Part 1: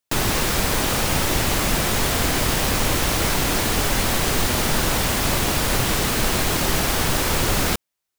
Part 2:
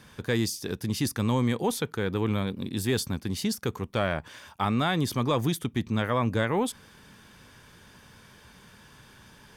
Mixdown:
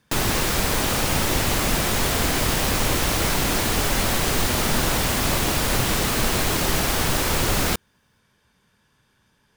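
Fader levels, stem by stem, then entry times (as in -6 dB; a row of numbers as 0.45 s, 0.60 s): -1.0 dB, -12.0 dB; 0.00 s, 0.00 s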